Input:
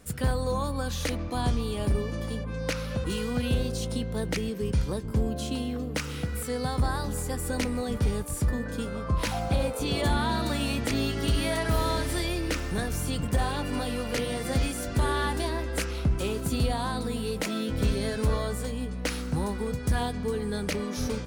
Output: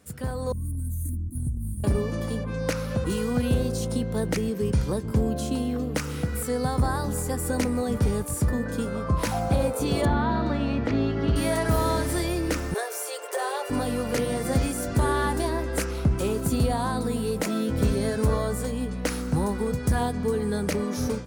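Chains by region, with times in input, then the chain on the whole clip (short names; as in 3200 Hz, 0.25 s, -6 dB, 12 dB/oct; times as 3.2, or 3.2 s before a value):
0.52–1.84 inverse Chebyshev band-stop 410–5500 Hz + comb 2.7 ms, depth 63% + compressor, threshold -26 dBFS
10.05–11.36 air absorption 240 m + flutter echo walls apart 10.5 m, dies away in 0.2 s
12.74–13.7 steep high-pass 370 Hz 96 dB/oct + comb 7.2 ms, depth 32%
whole clip: HPF 66 Hz; dynamic EQ 3200 Hz, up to -8 dB, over -49 dBFS, Q 0.88; AGC gain up to 8.5 dB; gain -4 dB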